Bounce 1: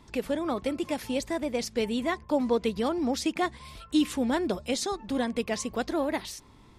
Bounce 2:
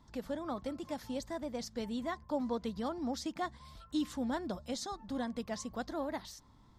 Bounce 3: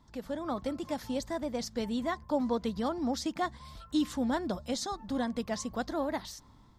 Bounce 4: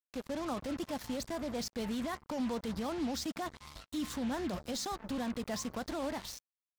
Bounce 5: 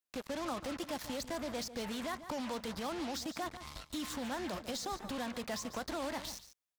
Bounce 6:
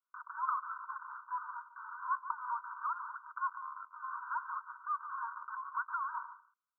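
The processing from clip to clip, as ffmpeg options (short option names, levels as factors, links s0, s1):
-af "equalizer=f=400:t=o:w=0.67:g=-9,equalizer=f=2500:t=o:w=0.67:g=-12,equalizer=f=10000:t=o:w=0.67:g=-10,volume=0.501"
-af "dynaudnorm=f=150:g=5:m=1.78"
-af "alimiter=level_in=1.78:limit=0.0631:level=0:latency=1:release=12,volume=0.562,acrusher=bits=6:mix=0:aa=0.5"
-filter_complex "[0:a]aecho=1:1:144:0.168,acrossover=split=470|1000[s0][s1][s2];[s0]acompressor=threshold=0.00501:ratio=4[s3];[s1]acompressor=threshold=0.00562:ratio=4[s4];[s2]acompressor=threshold=0.00708:ratio=4[s5];[s3][s4][s5]amix=inputs=3:normalize=0,volume=1.41"
-af "asuperpass=centerf=1200:order=20:qfactor=2,volume=3.16"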